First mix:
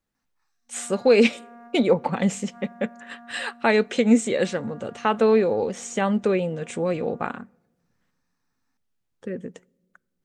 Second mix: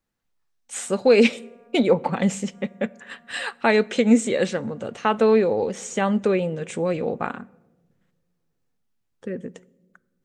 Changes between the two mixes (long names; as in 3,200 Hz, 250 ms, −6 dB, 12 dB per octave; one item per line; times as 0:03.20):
speech: send +8.5 dB
background −11.5 dB